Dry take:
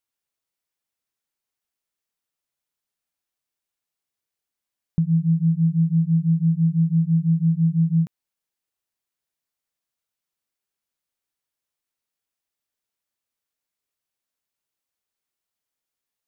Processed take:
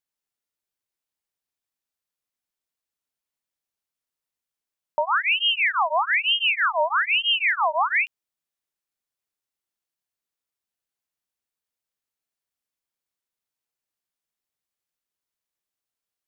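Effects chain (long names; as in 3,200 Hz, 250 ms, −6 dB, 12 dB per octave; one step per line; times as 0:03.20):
ring modulator whose carrier an LFO sweeps 1,900 Hz, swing 60%, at 1.1 Hz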